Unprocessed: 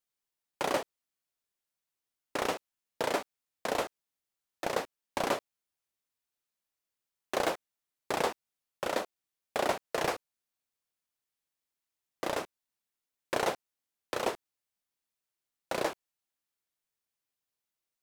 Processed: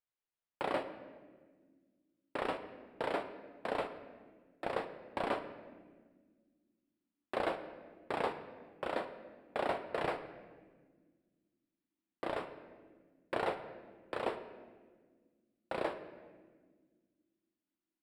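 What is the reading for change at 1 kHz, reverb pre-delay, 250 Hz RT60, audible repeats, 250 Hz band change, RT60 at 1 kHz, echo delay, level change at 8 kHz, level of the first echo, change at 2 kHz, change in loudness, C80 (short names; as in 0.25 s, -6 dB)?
-4.0 dB, 9 ms, 2.9 s, none, -3.5 dB, 1.3 s, none, under -20 dB, none, -5.0 dB, -5.0 dB, 12.0 dB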